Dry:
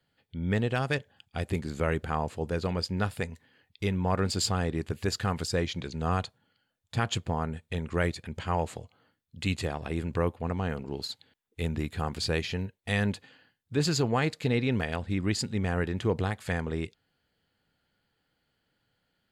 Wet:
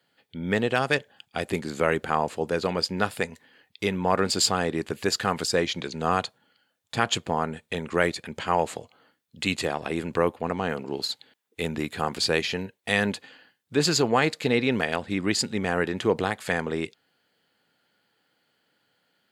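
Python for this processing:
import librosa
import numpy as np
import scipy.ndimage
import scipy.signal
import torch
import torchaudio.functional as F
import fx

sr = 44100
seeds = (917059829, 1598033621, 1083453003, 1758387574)

y = scipy.signal.sosfilt(scipy.signal.bessel(2, 270.0, 'highpass', norm='mag', fs=sr, output='sos'), x)
y = y * 10.0 ** (7.0 / 20.0)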